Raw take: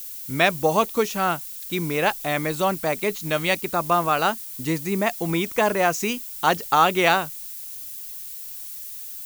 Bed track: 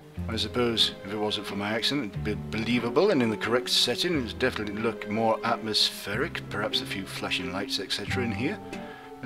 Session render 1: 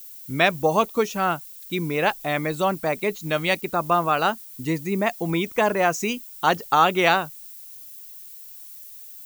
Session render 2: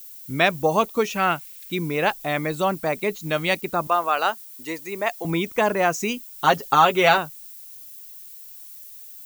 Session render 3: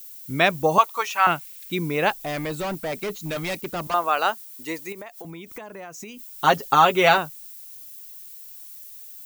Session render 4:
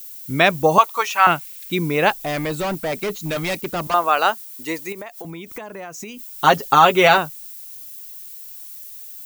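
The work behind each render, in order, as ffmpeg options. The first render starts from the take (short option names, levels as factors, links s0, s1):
-af "afftdn=nr=8:nf=-36"
-filter_complex "[0:a]asettb=1/sr,asplit=3[s0][s1][s2];[s0]atrim=end=1.044[s3];[s1]atrim=start=1.04:end=1.72,asetpts=PTS-STARTPTS,afade=t=in:d=0.004:c=qsin,afade=t=out:st=0.676:d=0.004:c=qsin,equalizer=f=2300:w=1.5:g=9[s4];[s2]atrim=start=1.716[s5];[s3][s4]acrossfade=d=0.004:c1=hsin:c2=qsin[s6];[s6][s5]acrossfade=d=0.004:c1=qsin:c2=hsin,asettb=1/sr,asplit=3[s7][s8][s9];[s7]atrim=end=3.874[s10];[s8]atrim=start=3.87:end=5.25,asetpts=PTS-STARTPTS,afade=t=in:d=0.004:c=qsin,afade=t=out:st=1.376:d=0.004:c=qsin,highpass=460[s11];[s9]atrim=start=5.246[s12];[s10][s11]acrossfade=d=0.004:c1=hsin:c2=qsin[s13];[s13][s12]acrossfade=d=0.004:c1=qsin:c2=hsin,asettb=1/sr,asplit=3[s14][s15][s16];[s14]atrim=end=6.384[s17];[s15]atrim=start=6.38:end=7.18,asetpts=PTS-STARTPTS,afade=t=in:d=0.004:c=qsin,afade=t=out:st=0.796:d=0.004:c=qsin,aecho=1:1:7.4:0.65,atrim=end_sample=35280[s18];[s16]atrim=start=7.176[s19];[s17][s18]acrossfade=d=0.004:c1=hsin:c2=qsin[s20];[s20][s19]acrossfade=d=0.004:c1=qsin:c2=hsin"
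-filter_complex "[0:a]asettb=1/sr,asplit=3[s0][s1][s2];[s0]atrim=end=0.784[s3];[s1]atrim=start=0.78:end=1.27,asetpts=PTS-STARTPTS,afade=t=in:d=0.004:c=qsin,afade=t=out:st=0.486:d=0.004:c=qsin,highpass=f=970:t=q:w=2.3[s4];[s2]atrim=start=1.266[s5];[s3][s4]acrossfade=d=0.004:c1=hsin:c2=qsin[s6];[s6][s5]acrossfade=d=0.004:c1=qsin:c2=hsin,asettb=1/sr,asplit=3[s7][s8][s9];[s7]atrim=end=2.254[s10];[s8]atrim=start=2.25:end=3.94,asetpts=PTS-STARTPTS,afade=t=in:d=0.004:c=qsin,afade=t=out:st=1.686:d=0.004:c=qsin,volume=17.8,asoftclip=hard,volume=0.0562[s11];[s9]atrim=start=3.936[s12];[s10][s11]acrossfade=d=0.004:c1=hsin:c2=qsin[s13];[s13][s12]acrossfade=d=0.004:c1=qsin:c2=hsin,asettb=1/sr,asplit=3[s14][s15][s16];[s14]atrim=end=4.924[s17];[s15]atrim=start=4.92:end=6.19,asetpts=PTS-STARTPTS,afade=t=in:d=0.004:c=qsin,afade=t=out:st=1.266:d=0.004:c=qsin,acompressor=threshold=0.02:ratio=16:attack=3.2:release=140:knee=1:detection=peak[s18];[s16]atrim=start=6.186[s19];[s17][s18]acrossfade=d=0.004:c1=hsin:c2=qsin[s20];[s20][s19]acrossfade=d=0.004:c1=qsin:c2=hsin"
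-af "volume=1.68,alimiter=limit=0.891:level=0:latency=1"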